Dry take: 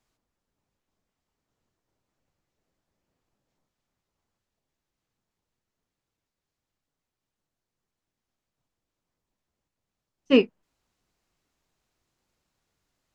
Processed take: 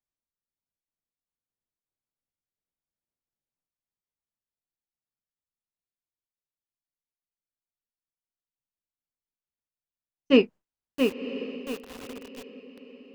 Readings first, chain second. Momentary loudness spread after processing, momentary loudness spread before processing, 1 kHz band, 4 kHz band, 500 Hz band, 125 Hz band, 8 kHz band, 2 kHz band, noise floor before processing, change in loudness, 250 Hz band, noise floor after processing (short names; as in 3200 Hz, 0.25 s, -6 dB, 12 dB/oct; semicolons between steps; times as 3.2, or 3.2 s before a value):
22 LU, 8 LU, +2.5 dB, +1.5 dB, +1.5 dB, +1.5 dB, n/a, +1.5 dB, under -85 dBFS, -4.5 dB, +1.5 dB, under -85 dBFS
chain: gate with hold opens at -51 dBFS; diffused feedback echo 1.029 s, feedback 41%, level -12 dB; lo-fi delay 0.678 s, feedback 35%, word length 6-bit, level -5.5 dB